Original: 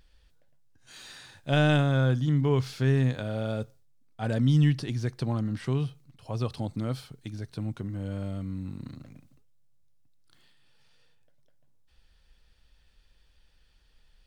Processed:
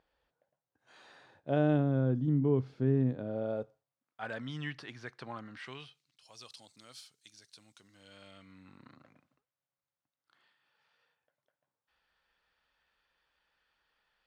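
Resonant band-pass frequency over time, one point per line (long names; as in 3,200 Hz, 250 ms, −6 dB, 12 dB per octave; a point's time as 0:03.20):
resonant band-pass, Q 1.1
0:01.01 750 Hz
0:01.87 290 Hz
0:03.15 290 Hz
0:04.22 1,500 Hz
0:05.44 1,500 Hz
0:06.33 6,400 Hz
0:07.77 6,400 Hz
0:08.93 1,200 Hz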